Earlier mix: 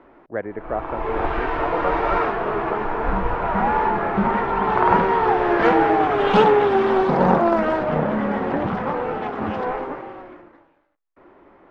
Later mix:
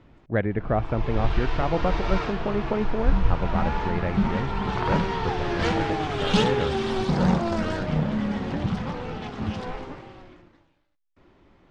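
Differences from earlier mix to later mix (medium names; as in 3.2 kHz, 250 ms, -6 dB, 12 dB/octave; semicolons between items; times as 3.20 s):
background -11.5 dB; master: remove three-band isolator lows -17 dB, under 290 Hz, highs -23 dB, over 2 kHz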